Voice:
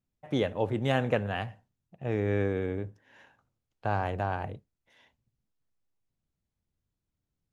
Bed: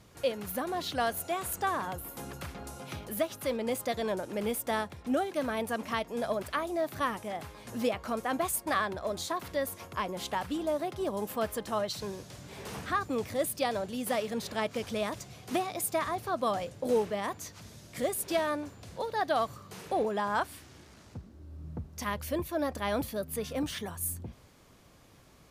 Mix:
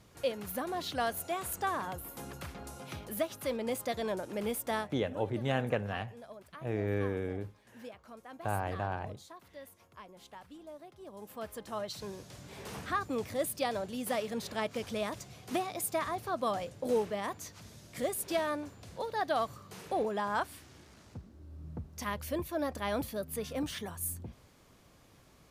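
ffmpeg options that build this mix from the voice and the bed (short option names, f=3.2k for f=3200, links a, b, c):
-filter_complex "[0:a]adelay=4600,volume=-4.5dB[a];[1:a]volume=12.5dB,afade=t=out:st=4.77:d=0.31:silence=0.177828,afade=t=in:st=11.02:d=1.38:silence=0.177828[b];[a][b]amix=inputs=2:normalize=0"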